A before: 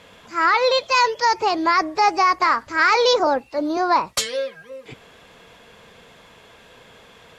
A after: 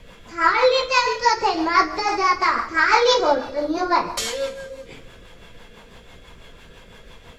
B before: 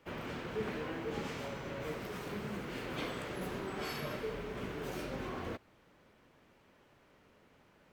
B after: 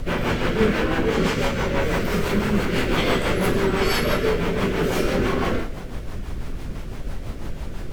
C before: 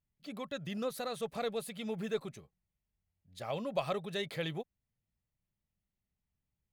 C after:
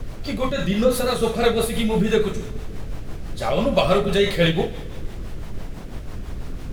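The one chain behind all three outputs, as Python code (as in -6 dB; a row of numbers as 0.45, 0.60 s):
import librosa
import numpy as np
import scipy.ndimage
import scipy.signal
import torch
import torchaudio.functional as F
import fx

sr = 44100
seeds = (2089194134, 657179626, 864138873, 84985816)

y = fx.rev_double_slope(x, sr, seeds[0], early_s=0.4, late_s=1.7, knee_db=-17, drr_db=-1.0)
y = fx.dmg_noise_colour(y, sr, seeds[1], colour='brown', level_db=-43.0)
y = fx.rotary(y, sr, hz=6.0)
y = y * 10.0 ** (-22 / 20.0) / np.sqrt(np.mean(np.square(y)))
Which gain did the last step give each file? -1.0, +17.0, +16.5 dB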